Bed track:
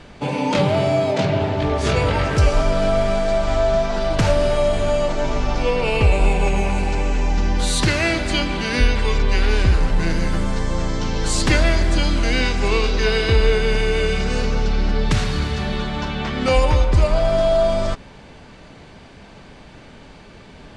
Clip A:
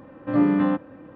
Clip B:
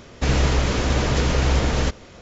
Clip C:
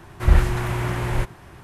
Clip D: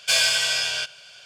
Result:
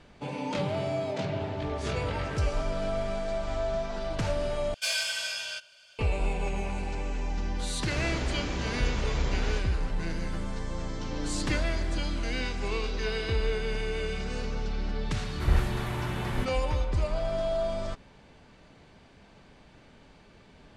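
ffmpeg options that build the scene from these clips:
-filter_complex "[0:a]volume=-12.5dB[a];[4:a]aecho=1:1:3.3:0.56[b];[1:a]acompressor=threshold=-30dB:ratio=6:attack=3.2:release=140:knee=1:detection=peak[c];[a]asplit=2[d][e];[d]atrim=end=4.744[f];[b]atrim=end=1.25,asetpts=PTS-STARTPTS,volume=-11.5dB[g];[e]atrim=start=5.986[h];[2:a]atrim=end=2.21,asetpts=PTS-STARTPTS,volume=-13dB,afade=t=in:d=0.004:c=hsin,afade=t=out:st=2.206:d=0.004:c=hsin,adelay=7690[i];[c]atrim=end=1.15,asetpts=PTS-STARTPTS,volume=-6dB,afade=t=in:d=0.004:c=hsin,afade=t=out:st=1.146:d=0.004:c=hsin,adelay=10840[j];[3:a]atrim=end=1.63,asetpts=PTS-STARTPTS,volume=-8.5dB,afade=t=in:d=0.004:c=hsin,afade=t=out:st=1.626:d=0.004:c=hsin,adelay=15200[k];[f][g]acrossfade=d=0.004:c1=hsin:c2=hsin[l];[l][h]acrossfade=d=0.004:c1=hsin:c2=hsin[m];[m][i][j][k]amix=inputs=4:normalize=0"

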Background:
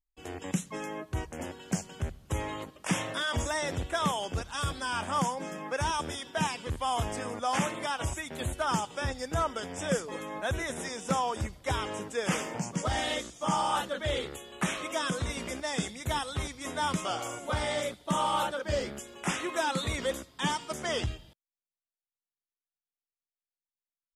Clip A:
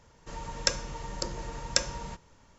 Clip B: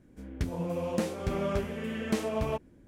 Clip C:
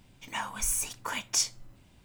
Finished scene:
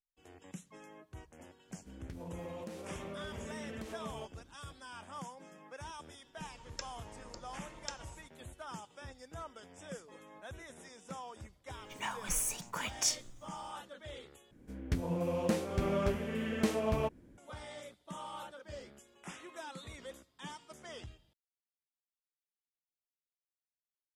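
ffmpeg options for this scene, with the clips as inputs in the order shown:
-filter_complex "[2:a]asplit=2[a][b];[0:a]volume=-16.5dB[c];[a]acompressor=threshold=-33dB:ratio=6:attack=3.2:release=140:knee=1:detection=peak[d];[c]asplit=2[e][f];[e]atrim=end=14.514[g];[b]atrim=end=2.87,asetpts=PTS-STARTPTS,volume=-1.5dB[h];[f]atrim=start=17.376[i];[d]atrim=end=2.87,asetpts=PTS-STARTPTS,volume=-7.5dB,afade=t=in:d=0.004:c=hsin,afade=t=out:st=2.866:d=0.004:c=hsin,adelay=1690[j];[1:a]atrim=end=2.58,asetpts=PTS-STARTPTS,volume=-17dB,afade=t=in:d=0.004:c=hsin,afade=t=out:st=2.576:d=0.004:c=hsin,adelay=6120[k];[3:a]atrim=end=2.04,asetpts=PTS-STARTPTS,volume=-4.5dB,afade=t=in:d=0.004:c=hsin,afade=t=out:st=2.036:d=0.004:c=hsin,adelay=11680[l];[g][h]acrossfade=d=0.004:c1=hsin:c2=hsin[m];[m][i]acrossfade=d=0.004:c1=hsin:c2=hsin[n];[n][j][k][l]amix=inputs=4:normalize=0"

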